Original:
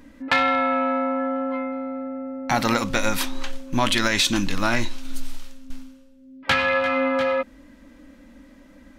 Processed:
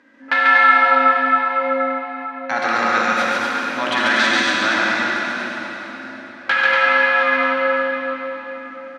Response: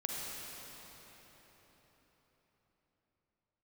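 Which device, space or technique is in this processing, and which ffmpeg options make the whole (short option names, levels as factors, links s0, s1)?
station announcement: -filter_complex "[0:a]highpass=330,lowpass=4800,equalizer=f=1600:t=o:w=0.59:g=10,aecho=1:1:139.9|239.1:0.794|0.631[s0];[1:a]atrim=start_sample=2205[s1];[s0][s1]afir=irnorm=-1:irlink=0,volume=0.75"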